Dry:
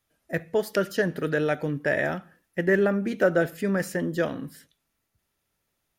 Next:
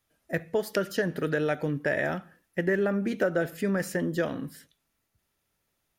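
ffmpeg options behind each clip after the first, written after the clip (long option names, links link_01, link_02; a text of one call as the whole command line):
ffmpeg -i in.wav -af "acompressor=threshold=-23dB:ratio=3" out.wav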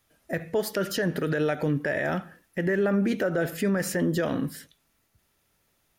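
ffmpeg -i in.wav -af "alimiter=limit=-24dB:level=0:latency=1:release=68,volume=7dB" out.wav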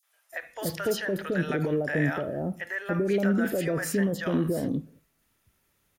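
ffmpeg -i in.wav -filter_complex "[0:a]acrossover=split=700|4700[link_01][link_02][link_03];[link_02]adelay=30[link_04];[link_01]adelay=320[link_05];[link_05][link_04][link_03]amix=inputs=3:normalize=0" out.wav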